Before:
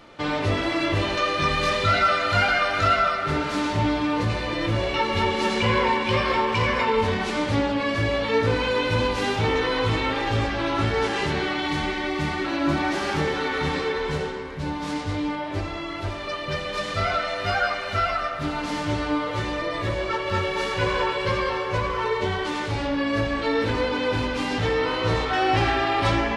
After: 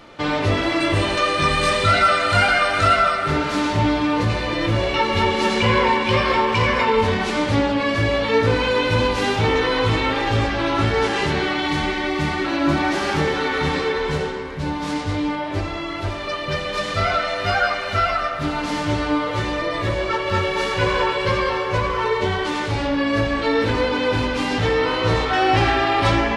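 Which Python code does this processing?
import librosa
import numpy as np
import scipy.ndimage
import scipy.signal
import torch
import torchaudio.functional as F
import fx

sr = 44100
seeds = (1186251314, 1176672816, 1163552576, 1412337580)

y = fx.peak_eq(x, sr, hz=8600.0, db=14.5, octaves=0.2, at=(0.8, 3.28))
y = y * librosa.db_to_amplitude(4.0)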